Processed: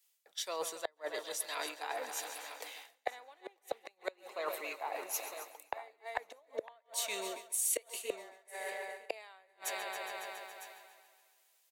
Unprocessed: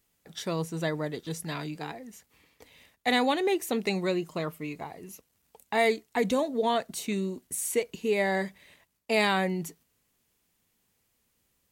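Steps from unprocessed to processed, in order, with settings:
echo machine with several playback heads 139 ms, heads first and second, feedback 58%, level −17 dB
gate with flip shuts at −19 dBFS, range −39 dB
high-pass filter 530 Hz 24 dB per octave
single-tap delay 956 ms −22.5 dB
reversed playback
downward compressor 6 to 1, threshold −51 dBFS, peak gain reduction 19.5 dB
reversed playback
multiband upward and downward expander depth 70%
level +13 dB

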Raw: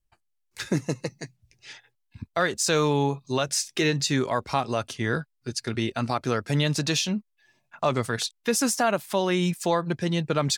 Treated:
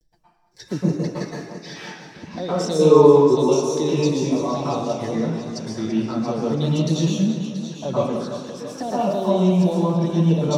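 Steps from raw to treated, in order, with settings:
noise gate −55 dBFS, range −7 dB
upward compression, threshold −41 dBFS
0:02.79–0:03.36: hollow resonant body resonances 400/990 Hz, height 14 dB, ringing for 25 ms
0:08.04–0:08.77: downward compressor 4 to 1, threshold −35 dBFS, peak gain reduction 13.5 dB
flanger swept by the level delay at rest 6.6 ms, full sweep at −21.5 dBFS
0:01.05–0:02.29: mid-hump overdrive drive 26 dB, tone 3,300 Hz, clips at −20 dBFS
pitch vibrato 0.47 Hz 47 cents
echo with a time of its own for lows and highs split 2,100 Hz, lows 181 ms, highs 683 ms, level −11 dB
convolution reverb RT60 0.70 s, pre-delay 108 ms, DRR −8.5 dB
feedback echo with a swinging delay time 335 ms, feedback 61%, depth 50 cents, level −12.5 dB
level −11.5 dB

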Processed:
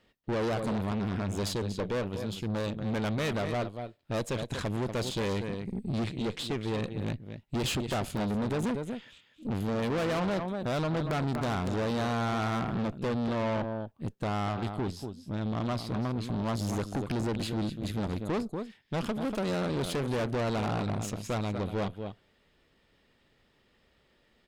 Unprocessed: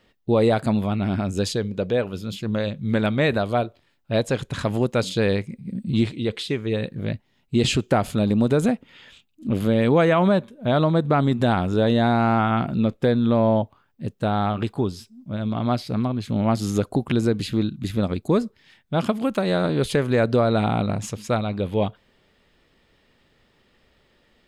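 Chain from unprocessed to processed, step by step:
wrap-around overflow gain 7.5 dB
single-tap delay 239 ms −11.5 dB
tube saturation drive 26 dB, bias 0.75
level −1.5 dB

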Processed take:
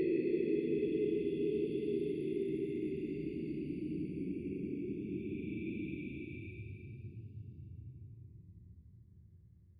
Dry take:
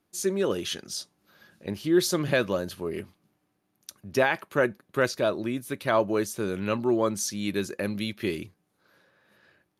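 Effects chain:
spectral envelope exaggerated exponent 2
extreme stretch with random phases 46×, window 0.05 s, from 0:08.30
level −4 dB

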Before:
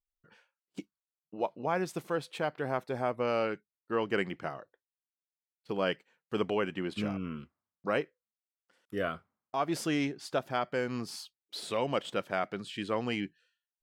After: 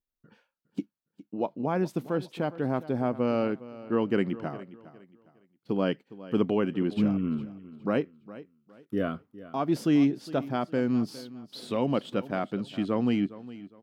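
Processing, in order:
octave-band graphic EQ 125/250/2,000/8,000 Hz +5/+11/−4/−7 dB
on a send: repeating echo 410 ms, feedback 30%, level −17 dB

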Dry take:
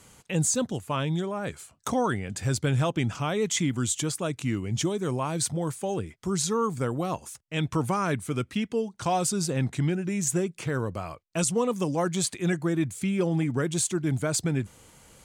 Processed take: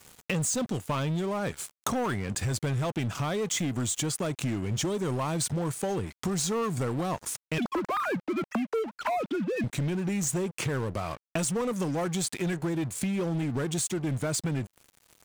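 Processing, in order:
0:07.58–0:09.64: three sine waves on the formant tracks
speech leveller within 4 dB 2 s
leveller curve on the samples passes 3
downward compressor 5 to 1, threshold −27 dBFS, peak gain reduction 11 dB
dead-zone distortion −42 dBFS

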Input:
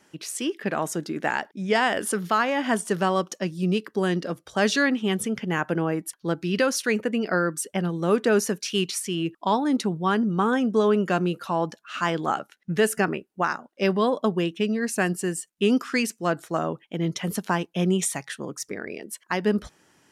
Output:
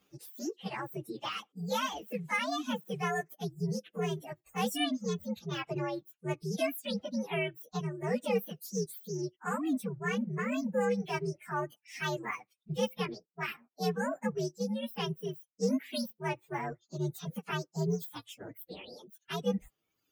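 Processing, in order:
partials spread apart or drawn together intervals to 129%
reverb reduction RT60 1.2 s
level −6.5 dB

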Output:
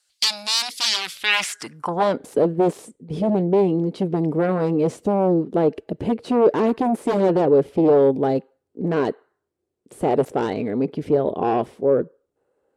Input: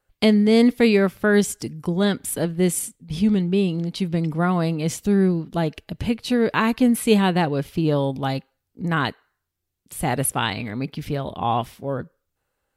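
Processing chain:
parametric band 9,000 Hz +13 dB 1.2 octaves
sine wavefolder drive 17 dB, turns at −0.5 dBFS
band-pass filter sweep 4,600 Hz → 420 Hz, 0:01.04–0:02.31
level −5.5 dB

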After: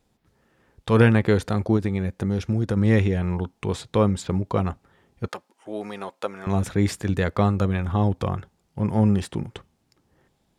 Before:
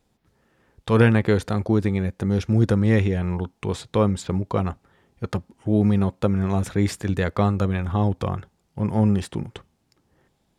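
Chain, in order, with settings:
0:01.76–0:02.77: downward compressor, threshold −19 dBFS, peak gain reduction 7 dB
0:05.28–0:06.47: high-pass filter 610 Hz 12 dB per octave

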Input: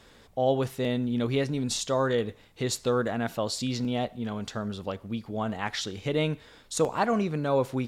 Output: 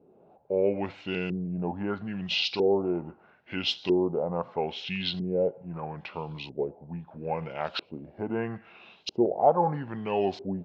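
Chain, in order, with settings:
loudspeaker in its box 270–9,000 Hz, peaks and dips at 430 Hz −9 dB, 1,100 Hz +4 dB, 1,600 Hz −7 dB, 2,500 Hz −8 dB, 5,600 Hz +4 dB
speed change −26%
auto-filter low-pass saw up 0.77 Hz 360–4,500 Hz

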